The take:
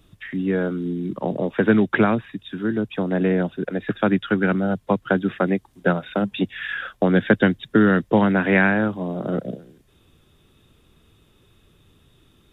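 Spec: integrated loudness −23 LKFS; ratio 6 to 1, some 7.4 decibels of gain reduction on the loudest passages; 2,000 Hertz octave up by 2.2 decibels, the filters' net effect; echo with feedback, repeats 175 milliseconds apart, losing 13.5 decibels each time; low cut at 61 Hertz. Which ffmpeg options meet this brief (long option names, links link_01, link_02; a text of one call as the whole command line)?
ffmpeg -i in.wav -af "highpass=61,equalizer=frequency=2000:width_type=o:gain=3,acompressor=threshold=-20dB:ratio=6,aecho=1:1:175|350:0.211|0.0444,volume=3dB" out.wav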